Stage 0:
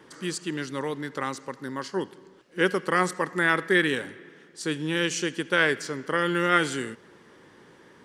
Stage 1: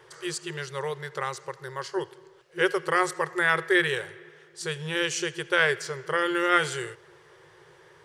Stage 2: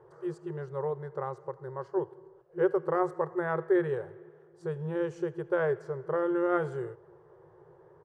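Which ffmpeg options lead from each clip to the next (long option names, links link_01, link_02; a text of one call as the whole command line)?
ffmpeg -i in.wav -af "afftfilt=real='re*(1-between(b*sr/4096,170,340))':imag='im*(1-between(b*sr/4096,170,340))':win_size=4096:overlap=0.75" out.wav
ffmpeg -i in.wav -af "firequalizer=gain_entry='entry(720,0);entry(2200,-25);entry(3200,-29)':delay=0.05:min_phase=1" out.wav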